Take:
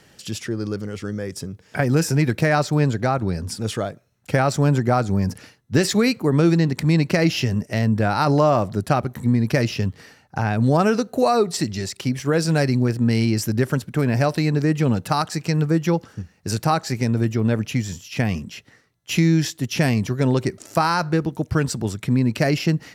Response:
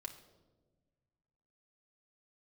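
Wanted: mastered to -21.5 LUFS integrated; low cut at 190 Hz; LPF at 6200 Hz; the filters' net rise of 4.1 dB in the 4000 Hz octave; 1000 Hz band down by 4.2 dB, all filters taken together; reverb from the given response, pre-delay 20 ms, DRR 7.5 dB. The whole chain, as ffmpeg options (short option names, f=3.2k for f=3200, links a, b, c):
-filter_complex "[0:a]highpass=190,lowpass=6.2k,equalizer=f=1k:t=o:g=-6.5,equalizer=f=4k:t=o:g=6.5,asplit=2[a][b];[1:a]atrim=start_sample=2205,adelay=20[c];[b][c]afir=irnorm=-1:irlink=0,volume=-4dB[d];[a][d]amix=inputs=2:normalize=0,volume=1.5dB"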